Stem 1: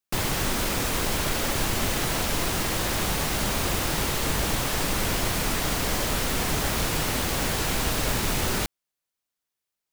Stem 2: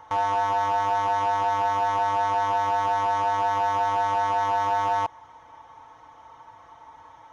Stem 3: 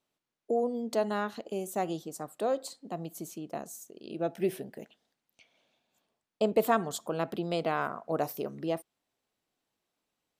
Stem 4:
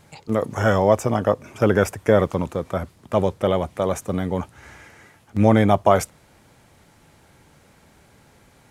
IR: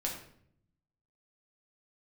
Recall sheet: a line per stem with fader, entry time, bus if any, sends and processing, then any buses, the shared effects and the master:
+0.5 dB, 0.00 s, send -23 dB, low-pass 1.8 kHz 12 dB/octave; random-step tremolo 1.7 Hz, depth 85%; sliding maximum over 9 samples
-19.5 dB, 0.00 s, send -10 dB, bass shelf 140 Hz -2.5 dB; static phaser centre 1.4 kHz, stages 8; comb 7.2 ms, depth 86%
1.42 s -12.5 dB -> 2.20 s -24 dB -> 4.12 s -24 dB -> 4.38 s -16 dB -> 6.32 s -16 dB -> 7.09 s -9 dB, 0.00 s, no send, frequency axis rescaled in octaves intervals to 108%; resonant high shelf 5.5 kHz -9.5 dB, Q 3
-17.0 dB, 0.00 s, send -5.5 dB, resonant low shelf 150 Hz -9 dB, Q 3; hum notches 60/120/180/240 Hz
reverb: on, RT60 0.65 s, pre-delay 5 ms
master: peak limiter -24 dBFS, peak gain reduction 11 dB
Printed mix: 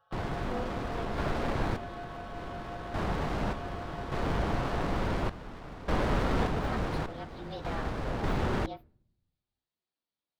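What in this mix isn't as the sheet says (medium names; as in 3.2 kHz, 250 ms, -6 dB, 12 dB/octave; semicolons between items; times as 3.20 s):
stem 4: muted; master: missing peak limiter -24 dBFS, peak gain reduction 11 dB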